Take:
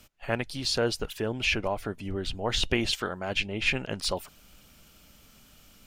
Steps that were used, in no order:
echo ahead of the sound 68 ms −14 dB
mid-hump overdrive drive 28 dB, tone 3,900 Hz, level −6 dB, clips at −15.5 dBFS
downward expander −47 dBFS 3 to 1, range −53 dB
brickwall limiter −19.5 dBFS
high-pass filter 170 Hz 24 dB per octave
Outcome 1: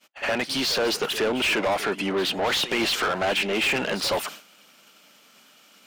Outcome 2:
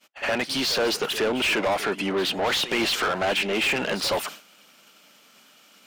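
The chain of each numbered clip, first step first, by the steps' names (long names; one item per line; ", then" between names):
high-pass filter, then downward expander, then brickwall limiter, then mid-hump overdrive, then echo ahead of the sound
brickwall limiter, then high-pass filter, then downward expander, then mid-hump overdrive, then echo ahead of the sound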